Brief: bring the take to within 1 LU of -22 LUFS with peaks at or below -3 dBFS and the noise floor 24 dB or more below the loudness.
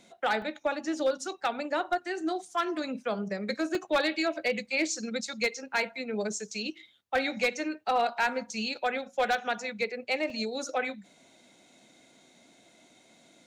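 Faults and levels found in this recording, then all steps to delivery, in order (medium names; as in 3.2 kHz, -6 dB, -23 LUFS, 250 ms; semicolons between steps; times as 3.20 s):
clipped samples 0.5%; clipping level -20.0 dBFS; dropouts 3; longest dropout 1.8 ms; loudness -31.0 LUFS; peak level -20.0 dBFS; loudness target -22.0 LUFS
-> clip repair -20 dBFS; interpolate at 0.42/3.75/10.30 s, 1.8 ms; trim +9 dB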